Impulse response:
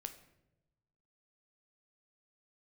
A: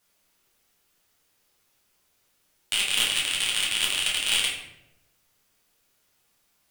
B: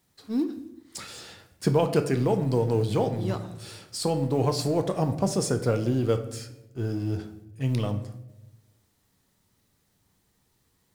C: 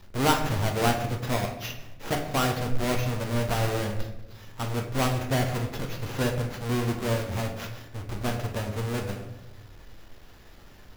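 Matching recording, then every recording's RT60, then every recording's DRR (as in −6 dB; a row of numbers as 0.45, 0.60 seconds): B; 0.90, 0.95, 0.90 seconds; −4.5, 7.5, 2.5 decibels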